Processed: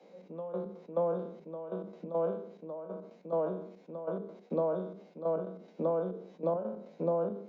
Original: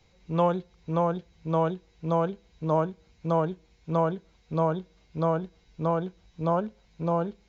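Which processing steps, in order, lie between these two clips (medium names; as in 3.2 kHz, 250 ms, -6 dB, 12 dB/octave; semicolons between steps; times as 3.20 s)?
spectral sustain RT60 0.41 s; peaking EQ 560 Hz +12.5 dB 0.8 oct; compression 3:1, threshold -36 dBFS, peak gain reduction 19 dB; trance gate "xx...x.x.xx" 140 bpm -12 dB; steep high-pass 180 Hz 72 dB/octave; tilt EQ -3.5 dB/octave; hum notches 50/100/150/200/250/300/350/400/450 Hz; decay stretcher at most 81 dB/s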